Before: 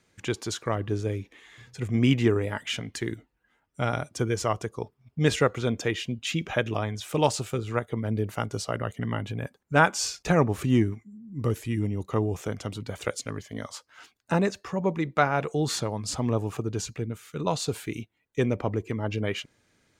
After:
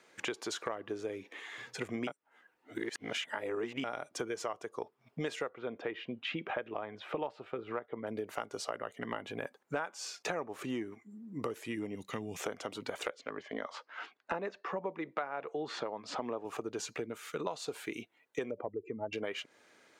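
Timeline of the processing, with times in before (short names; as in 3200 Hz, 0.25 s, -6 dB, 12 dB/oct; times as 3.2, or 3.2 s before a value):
2.07–3.84 reverse
5.49–8.07 air absorption 390 m
11.95–12.4 band shelf 650 Hz -14.5 dB 2.4 oct
13.1–16.45 BPF 120–3200 Hz
18.51–19.13 spectral contrast raised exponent 2
whole clip: HPF 430 Hz 12 dB/oct; high shelf 3100 Hz -8.5 dB; compressor 8:1, threshold -43 dBFS; gain +8.5 dB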